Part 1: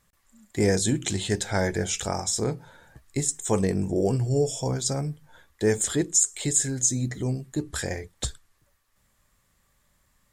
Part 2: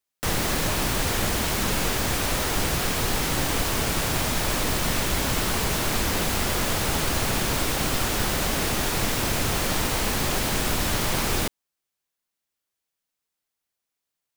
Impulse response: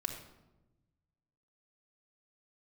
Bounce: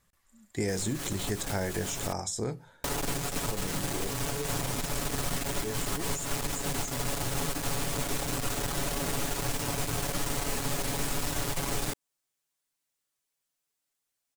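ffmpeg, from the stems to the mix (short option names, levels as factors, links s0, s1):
-filter_complex "[0:a]volume=0.668,afade=t=out:st=2.55:d=0.34:silence=0.316228,asplit=2[s0][s1];[1:a]equalizer=f=8100:t=o:w=0.89:g=5,aecho=1:1:7.1:0.95,aeval=exprs='(tanh(11.2*val(0)+0.6)-tanh(0.6))/11.2':c=same,adelay=450,volume=0.891,asplit=3[s2][s3][s4];[s2]atrim=end=2.13,asetpts=PTS-STARTPTS,afade=t=out:st=2.126:d=0.004:c=hsin[s5];[s3]atrim=start=2.13:end=2.84,asetpts=PTS-STARTPTS,volume=0[s6];[s4]atrim=start=2.84,asetpts=PTS-STARTPTS,afade=t=in:d=0.004:c=hsin[s7];[s5][s6][s7]concat=n=3:v=0:a=1[s8];[s1]apad=whole_len=653504[s9];[s8][s9]sidechaincompress=threshold=0.0126:ratio=10:attack=8.5:release=142[s10];[s0][s10]amix=inputs=2:normalize=0,acrossover=split=1100|7200[s11][s12][s13];[s11]acompressor=threshold=0.0398:ratio=4[s14];[s12]acompressor=threshold=0.0126:ratio=4[s15];[s13]acompressor=threshold=0.0141:ratio=4[s16];[s14][s15][s16]amix=inputs=3:normalize=0"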